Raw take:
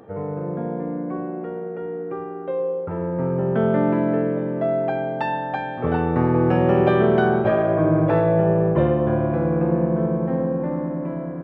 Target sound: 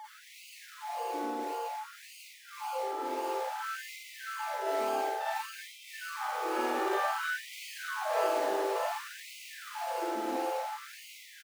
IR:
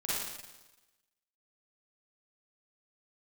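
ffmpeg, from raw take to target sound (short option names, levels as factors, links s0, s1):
-filter_complex "[0:a]equalizer=f=2300:w=1.5:g=-6.5,aeval=exprs='val(0)+0.0447*sin(2*PI*860*n/s)':c=same,acrossover=split=210|590[s0][s1][s2];[s1]alimiter=limit=0.112:level=0:latency=1[s3];[s0][s3][s2]amix=inputs=3:normalize=0,equalizer=f=410:w=0.77:g=-12,asplit=2[s4][s5];[s5]acrusher=samples=32:mix=1:aa=0.000001:lfo=1:lforange=19.2:lforate=1.8,volume=0.376[s6];[s4][s6]amix=inputs=2:normalize=0,aecho=1:1:603:0.473[s7];[1:a]atrim=start_sample=2205,afade=t=out:st=0.22:d=0.01,atrim=end_sample=10143[s8];[s7][s8]afir=irnorm=-1:irlink=0,afftfilt=real='re*gte(b*sr/1024,240*pow(2000/240,0.5+0.5*sin(2*PI*0.56*pts/sr)))':imag='im*gte(b*sr/1024,240*pow(2000/240,0.5+0.5*sin(2*PI*0.56*pts/sr)))':win_size=1024:overlap=0.75,volume=0.473"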